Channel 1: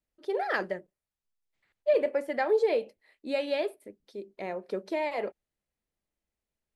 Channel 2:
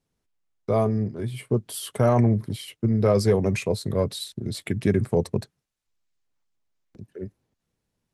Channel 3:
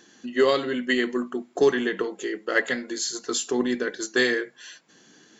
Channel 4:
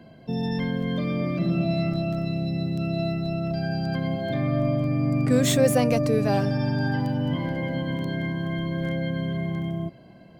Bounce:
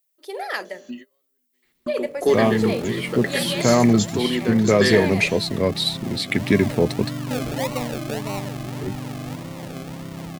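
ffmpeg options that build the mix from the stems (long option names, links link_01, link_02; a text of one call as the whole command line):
ffmpeg -i stem1.wav -i stem2.wav -i stem3.wav -i stem4.wav -filter_complex "[0:a]aemphasis=mode=production:type=riaa,bandreject=frequency=49.73:width_type=h:width=4,bandreject=frequency=99.46:width_type=h:width=4,bandreject=frequency=149.19:width_type=h:width=4,bandreject=frequency=198.92:width_type=h:width=4,bandreject=frequency=248.65:width_type=h:width=4,bandreject=frequency=298.38:width_type=h:width=4,bandreject=frequency=348.11:width_type=h:width=4,bandreject=frequency=397.84:width_type=h:width=4,bandreject=frequency=447.57:width_type=h:width=4,bandreject=frequency=497.3:width_type=h:width=4,bandreject=frequency=547.03:width_type=h:width=4,bandreject=frequency=596.76:width_type=h:width=4,bandreject=frequency=646.49:width_type=h:width=4,bandreject=frequency=696.22:width_type=h:width=4,volume=2dB,asplit=2[link_01][link_02];[1:a]equalizer=frequency=125:width_type=o:width=1:gain=-5,equalizer=frequency=250:width_type=o:width=1:gain=7,equalizer=frequency=2000:width_type=o:width=1:gain=11,equalizer=frequency=4000:width_type=o:width=1:gain=9,adelay=1650,volume=1dB[link_03];[2:a]adelay=650,volume=1dB[link_04];[3:a]acrusher=samples=37:mix=1:aa=0.000001:lfo=1:lforange=22.2:lforate=1.7,adelay=2000,volume=-6dB[link_05];[link_02]apad=whole_len=266376[link_06];[link_04][link_06]sidechaingate=range=-55dB:threshold=-58dB:ratio=16:detection=peak[link_07];[link_01][link_03][link_07][link_05]amix=inputs=4:normalize=0,equalizer=frequency=1500:width=5.4:gain=-5" out.wav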